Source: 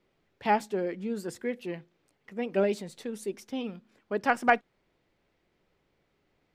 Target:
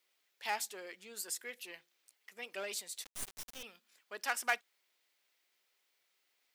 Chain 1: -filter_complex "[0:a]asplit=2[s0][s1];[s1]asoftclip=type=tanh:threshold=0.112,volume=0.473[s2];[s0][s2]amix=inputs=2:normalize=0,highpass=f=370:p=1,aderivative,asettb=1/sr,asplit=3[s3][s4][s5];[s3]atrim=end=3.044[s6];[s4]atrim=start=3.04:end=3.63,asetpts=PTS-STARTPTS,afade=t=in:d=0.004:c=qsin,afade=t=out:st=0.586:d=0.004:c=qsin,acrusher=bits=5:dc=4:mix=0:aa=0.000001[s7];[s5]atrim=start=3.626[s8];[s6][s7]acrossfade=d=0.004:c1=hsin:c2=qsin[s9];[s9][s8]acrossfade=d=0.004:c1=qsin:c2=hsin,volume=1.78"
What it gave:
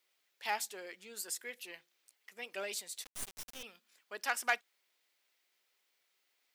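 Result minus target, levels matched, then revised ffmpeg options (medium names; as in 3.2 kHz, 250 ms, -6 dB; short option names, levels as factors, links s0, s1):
saturation: distortion -6 dB
-filter_complex "[0:a]asplit=2[s0][s1];[s1]asoftclip=type=tanh:threshold=0.0447,volume=0.473[s2];[s0][s2]amix=inputs=2:normalize=0,highpass=f=370:p=1,aderivative,asettb=1/sr,asplit=3[s3][s4][s5];[s3]atrim=end=3.044[s6];[s4]atrim=start=3.04:end=3.63,asetpts=PTS-STARTPTS,afade=t=in:d=0.004:c=qsin,afade=t=out:st=0.586:d=0.004:c=qsin,acrusher=bits=5:dc=4:mix=0:aa=0.000001[s7];[s5]atrim=start=3.626[s8];[s6][s7]acrossfade=d=0.004:c1=hsin:c2=qsin[s9];[s9][s8]acrossfade=d=0.004:c1=qsin:c2=hsin,volume=1.78"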